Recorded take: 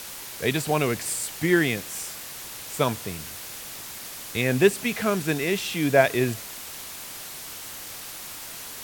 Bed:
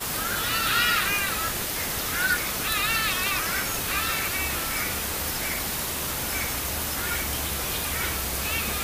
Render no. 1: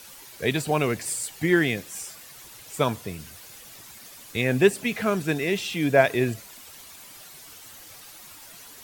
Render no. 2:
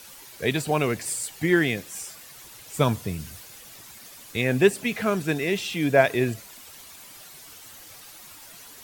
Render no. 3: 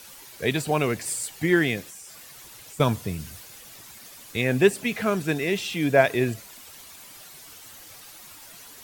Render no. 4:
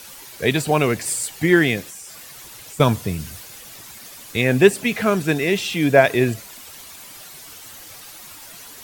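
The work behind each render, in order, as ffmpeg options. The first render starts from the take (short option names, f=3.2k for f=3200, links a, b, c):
-af "afftdn=nr=10:nf=-39"
-filter_complex "[0:a]asettb=1/sr,asplit=3[a][b][c];[a]atrim=end=2.754[d];[b]atrim=start=2.75:end=3.43,asetpts=PTS-STARTPTS,afade=t=in:d=0.004:c=qsin,afade=t=out:st=0.676:d=0.004:c=qsin,bass=f=250:g=7,treble=f=4k:g=2[e];[c]atrim=start=3.426[f];[d][e]acrossfade=d=0.004:c1=hsin:c2=qsin[g];[g][f]acrossfade=d=0.004:c1=qsin:c2=hsin"
-filter_complex "[0:a]asettb=1/sr,asplit=3[a][b][c];[a]atrim=end=1.894[d];[b]atrim=start=1.89:end=2.8,asetpts=PTS-STARTPTS,afade=t=in:d=0.004:c=qsin,afade=t=out:st=0.906:d=0.004:c=qsin,acompressor=threshold=-40dB:ratio=5:attack=3.2:release=140:knee=1:detection=peak[e];[c]atrim=start=2.796[f];[d][e]acrossfade=d=0.004:c1=hsin:c2=qsin[g];[g][f]acrossfade=d=0.004:c1=qsin:c2=hsin"
-af "volume=5.5dB,alimiter=limit=-1dB:level=0:latency=1"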